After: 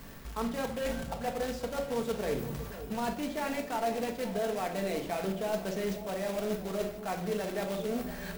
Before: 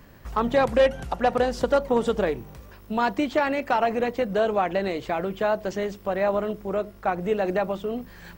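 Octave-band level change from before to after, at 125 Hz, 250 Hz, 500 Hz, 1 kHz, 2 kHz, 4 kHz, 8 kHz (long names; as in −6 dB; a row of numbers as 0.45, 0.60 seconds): −4.5 dB, −6.5 dB, −9.5 dB, −11.0 dB, −10.0 dB, −5.0 dB, can't be measured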